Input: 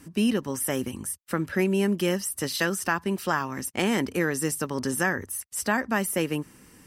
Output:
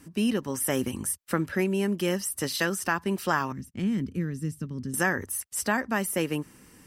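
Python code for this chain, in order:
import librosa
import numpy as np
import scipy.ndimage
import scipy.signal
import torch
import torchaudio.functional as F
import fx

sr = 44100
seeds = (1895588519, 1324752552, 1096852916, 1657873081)

y = fx.curve_eq(x, sr, hz=(190.0, 790.0, 1200.0, 3600.0, 11000.0), db=(0, -28, -21, -17, -22), at=(3.52, 4.94))
y = fx.rider(y, sr, range_db=3, speed_s=0.5)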